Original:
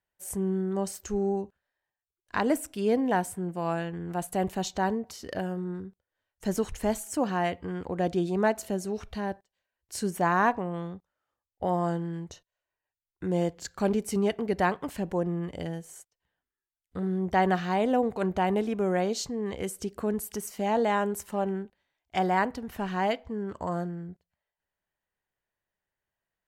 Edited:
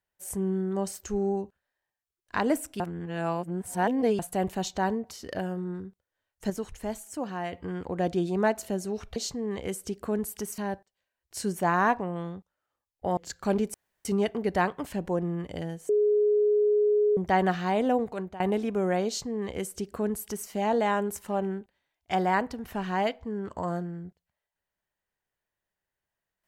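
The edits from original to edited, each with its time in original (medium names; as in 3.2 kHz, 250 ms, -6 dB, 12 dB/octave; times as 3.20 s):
2.80–4.19 s: reverse
6.50–7.53 s: gain -6 dB
11.75–13.52 s: delete
14.09 s: insert room tone 0.31 s
15.93–17.21 s: bleep 418 Hz -19.5 dBFS
17.99–18.44 s: fade out, to -19 dB
19.11–20.53 s: copy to 9.16 s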